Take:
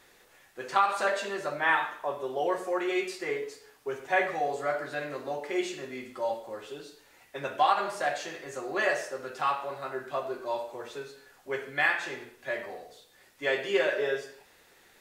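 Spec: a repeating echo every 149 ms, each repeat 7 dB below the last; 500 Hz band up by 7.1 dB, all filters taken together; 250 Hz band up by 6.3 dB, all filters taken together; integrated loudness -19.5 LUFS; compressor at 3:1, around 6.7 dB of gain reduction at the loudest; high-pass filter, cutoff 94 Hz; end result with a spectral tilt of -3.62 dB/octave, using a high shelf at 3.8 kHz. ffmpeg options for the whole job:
-af "highpass=94,equalizer=f=250:t=o:g=5,equalizer=f=500:t=o:g=7.5,highshelf=f=3800:g=4,acompressor=threshold=0.0631:ratio=3,aecho=1:1:149|298|447|596|745:0.447|0.201|0.0905|0.0407|0.0183,volume=2.99"

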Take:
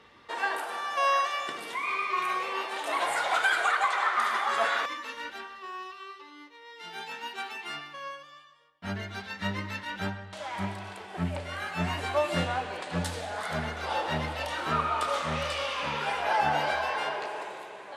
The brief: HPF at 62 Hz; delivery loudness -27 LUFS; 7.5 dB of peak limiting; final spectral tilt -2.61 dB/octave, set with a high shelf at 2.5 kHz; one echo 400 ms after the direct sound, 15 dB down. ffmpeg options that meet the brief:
-af "highpass=62,highshelf=f=2500:g=-4,alimiter=limit=0.0841:level=0:latency=1,aecho=1:1:400:0.178,volume=1.88"

